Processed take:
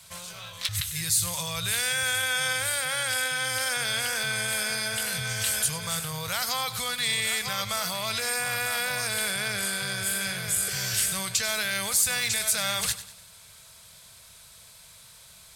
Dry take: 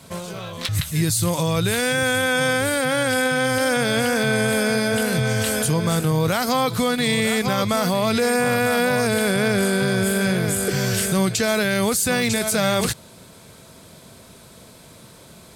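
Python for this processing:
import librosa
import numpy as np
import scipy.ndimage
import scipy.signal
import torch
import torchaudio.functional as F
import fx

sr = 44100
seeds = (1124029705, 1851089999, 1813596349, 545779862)

p1 = fx.tone_stack(x, sr, knobs='10-0-10')
y = p1 + fx.echo_feedback(p1, sr, ms=97, feedback_pct=41, wet_db=-14.0, dry=0)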